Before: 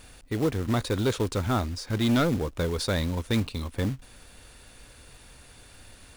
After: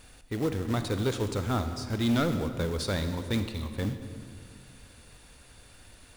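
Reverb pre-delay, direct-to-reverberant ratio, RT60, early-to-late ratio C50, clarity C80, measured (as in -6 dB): 37 ms, 8.5 dB, 2.0 s, 9.0 dB, 10.0 dB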